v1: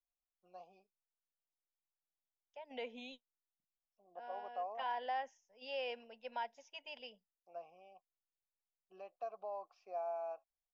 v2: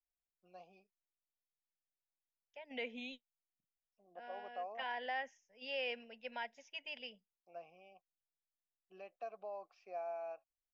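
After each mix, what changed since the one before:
master: add graphic EQ 125/250/1000/2000 Hz +6/+3/-7/+9 dB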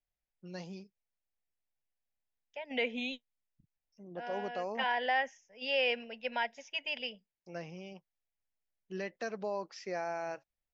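first voice: remove vowel filter a; second voice +9.5 dB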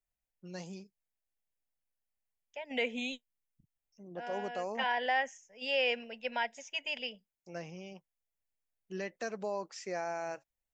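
master: remove steep low-pass 5700 Hz 36 dB/oct

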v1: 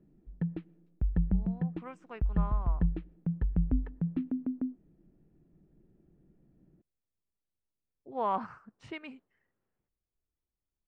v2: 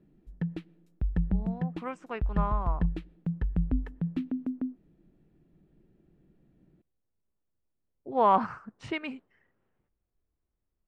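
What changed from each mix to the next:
speech +8.5 dB; background: remove tape spacing loss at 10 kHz 34 dB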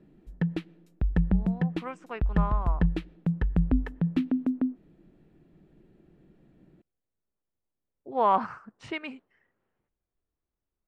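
background +8.5 dB; master: add low shelf 240 Hz -6 dB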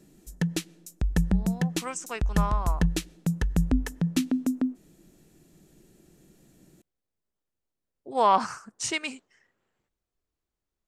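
master: remove air absorption 480 m

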